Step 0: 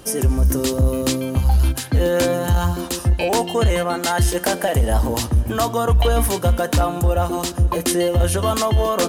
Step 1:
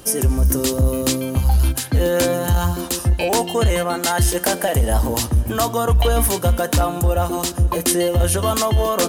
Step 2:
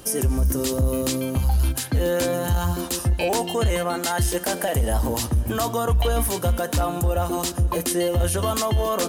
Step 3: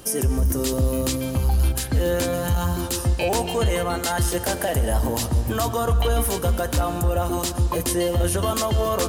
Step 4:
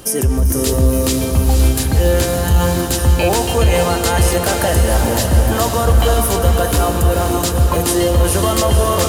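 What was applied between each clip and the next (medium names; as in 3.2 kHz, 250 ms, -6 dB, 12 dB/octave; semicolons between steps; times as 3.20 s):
treble shelf 7.3 kHz +6.5 dB
peak limiter -12 dBFS, peak gain reduction 6.5 dB; trim -2 dB
reverberation RT60 2.2 s, pre-delay 113 ms, DRR 11 dB
echo that smears into a reverb 508 ms, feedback 59%, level -4.5 dB; trim +6 dB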